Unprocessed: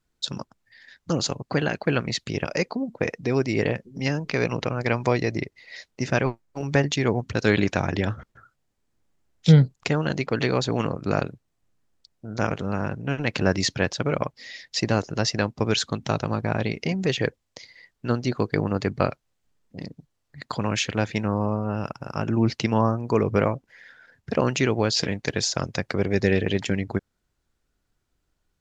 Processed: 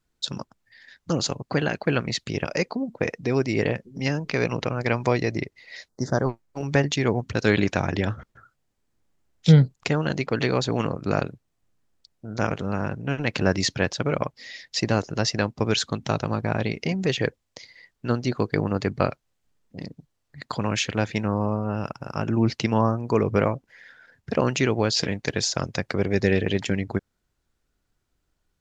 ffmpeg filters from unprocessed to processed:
-filter_complex "[0:a]asplit=3[s0][s1][s2];[s0]afade=t=out:st=5.88:d=0.02[s3];[s1]asuperstop=centerf=2600:order=4:qfactor=0.8,afade=t=in:st=5.88:d=0.02,afade=t=out:st=6.28:d=0.02[s4];[s2]afade=t=in:st=6.28:d=0.02[s5];[s3][s4][s5]amix=inputs=3:normalize=0"

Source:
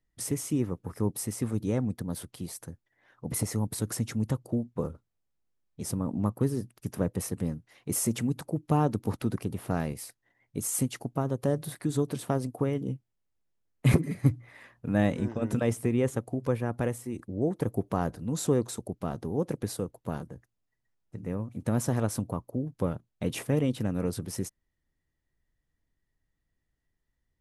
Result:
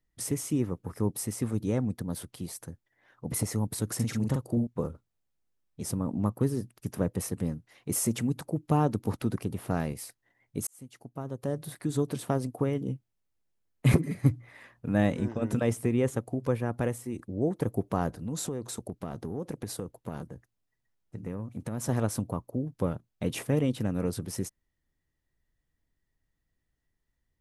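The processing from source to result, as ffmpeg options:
-filter_complex "[0:a]asettb=1/sr,asplit=3[s0][s1][s2];[s0]atrim=end=3.954[s3];[s1]atrim=start=3.95:end=4.67,asetpts=PTS-STARTPTS,afade=t=in:d=0.004:c=qsin,afade=t=out:st=0.716:d=0.004:c=qsin,asplit=2[s4][s5];[s5]adelay=43,volume=0.668[s6];[s4][s6]amix=inputs=2:normalize=0,atrim=end_sample=31752[s7];[s2]atrim=start=4.666[s8];[s3][s7]acrossfade=d=0.004:c1=hsin:c2=qsin[s9];[s9][s8]acrossfade=d=0.004:c1=qsin:c2=hsin,asettb=1/sr,asplit=3[s10][s11][s12];[s10]atrim=end=18.164[s13];[s11]atrim=start=18.16:end=21.89,asetpts=PTS-STARTPTS,afade=t=in:d=0.004:c=qsin,afade=t=out:st=3.726:d=0.004:c=qsin,acompressor=threshold=0.0355:ratio=10:attack=3.2:release=140:knee=1:detection=peak[s14];[s12]atrim=start=21.886[s15];[s13][s14]acrossfade=d=0.004:c1=hsin:c2=qsin[s16];[s16][s15]acrossfade=d=0.004:c1=qsin:c2=hsin,asplit=2[s17][s18];[s17]atrim=end=10.67,asetpts=PTS-STARTPTS,afade=t=out:st=10.666:d=0.004:c=hsin[s19];[s18]atrim=start=10.67,asetpts=PTS-STARTPTS,afade=t=in:d=1.4[s20];[s19][s20]concat=n=2:v=0:a=1"

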